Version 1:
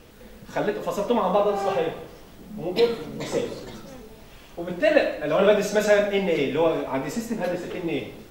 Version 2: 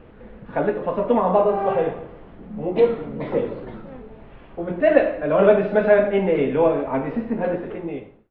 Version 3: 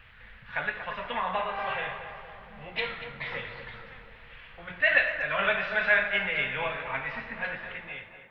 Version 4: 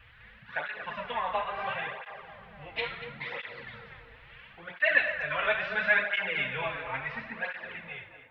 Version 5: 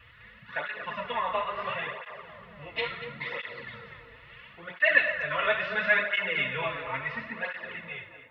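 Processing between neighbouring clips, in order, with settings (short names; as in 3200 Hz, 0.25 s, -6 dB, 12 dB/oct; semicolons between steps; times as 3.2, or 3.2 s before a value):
ending faded out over 0.80 s; Gaussian blur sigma 3.8 samples; gain +4 dB
EQ curve 110 Hz 0 dB, 320 Hz -22 dB, 1300 Hz +6 dB, 1800 Hz +15 dB; on a send: tape echo 0.236 s, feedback 65%, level -8.5 dB, low-pass 2000 Hz; on the sum: gain -7.5 dB
tape flanging out of phase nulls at 0.73 Hz, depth 5.6 ms; gain +1 dB
notch comb 790 Hz; gain +3 dB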